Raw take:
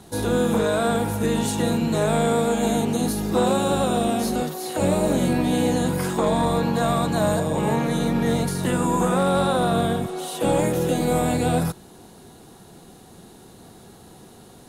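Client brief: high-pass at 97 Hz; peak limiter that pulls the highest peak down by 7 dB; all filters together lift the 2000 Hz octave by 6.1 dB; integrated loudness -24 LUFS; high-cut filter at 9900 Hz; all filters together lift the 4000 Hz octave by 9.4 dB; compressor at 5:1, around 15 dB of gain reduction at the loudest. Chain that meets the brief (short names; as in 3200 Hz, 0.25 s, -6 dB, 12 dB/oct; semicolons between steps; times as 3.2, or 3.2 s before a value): HPF 97 Hz; LPF 9900 Hz; bell 2000 Hz +6 dB; bell 4000 Hz +9 dB; compressor 5:1, threshold -34 dBFS; gain +13.5 dB; limiter -14.5 dBFS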